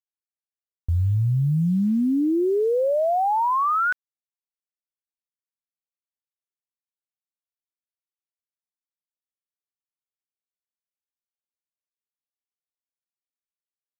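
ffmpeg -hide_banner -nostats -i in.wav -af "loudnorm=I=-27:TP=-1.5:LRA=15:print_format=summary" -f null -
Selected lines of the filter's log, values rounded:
Input Integrated:    -21.9 LUFS
Input True Peak:     -17.1 dBTP
Input LRA:             4.6 LU
Input Threshold:     -32.0 LUFS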